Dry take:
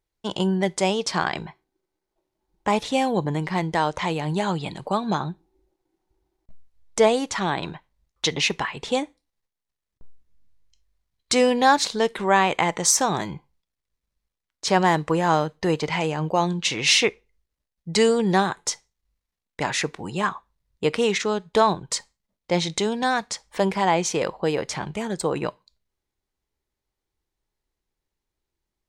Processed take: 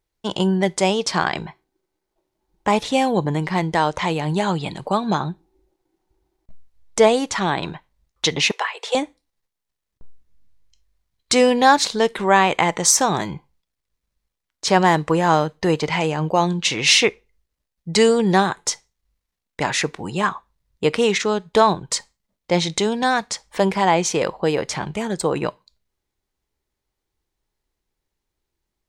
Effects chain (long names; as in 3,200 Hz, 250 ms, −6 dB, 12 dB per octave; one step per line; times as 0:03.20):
0:08.51–0:08.95: Butterworth high-pass 440 Hz 48 dB per octave
level +3.5 dB